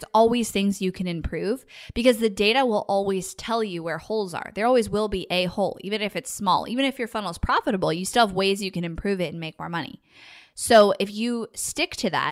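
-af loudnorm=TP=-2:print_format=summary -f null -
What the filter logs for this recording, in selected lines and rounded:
Input Integrated:    -23.6 LUFS
Input True Peak:      -5.8 dBTP
Input LRA:             2.1 LU
Input Threshold:     -33.9 LUFS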